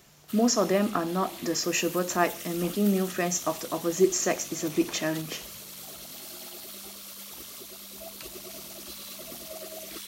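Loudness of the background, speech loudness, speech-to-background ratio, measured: -39.5 LUFS, -27.0 LUFS, 12.5 dB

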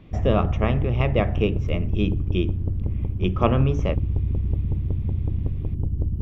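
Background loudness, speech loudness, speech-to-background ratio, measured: -26.5 LUFS, -25.5 LUFS, 1.0 dB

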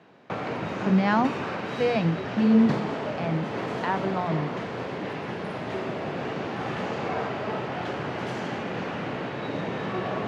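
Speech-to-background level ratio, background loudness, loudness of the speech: 6.0 dB, -31.5 LUFS, -25.5 LUFS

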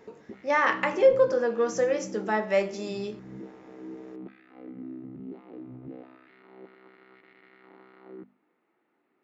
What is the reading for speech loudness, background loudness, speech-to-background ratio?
-25.0 LUFS, -44.0 LUFS, 19.0 dB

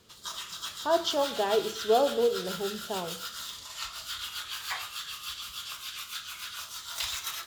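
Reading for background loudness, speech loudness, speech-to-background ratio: -36.0 LUFS, -29.0 LUFS, 7.0 dB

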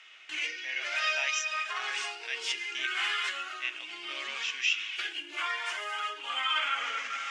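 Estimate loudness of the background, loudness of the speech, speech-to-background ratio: -32.5 LUFS, -35.0 LUFS, -2.5 dB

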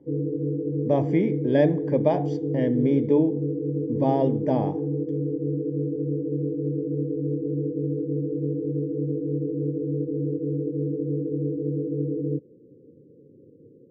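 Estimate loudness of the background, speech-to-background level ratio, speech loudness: -28.0 LUFS, 3.5 dB, -24.5 LUFS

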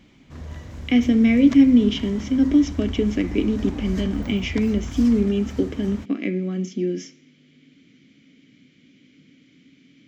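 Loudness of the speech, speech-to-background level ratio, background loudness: -20.5 LUFS, 14.5 dB, -35.0 LUFS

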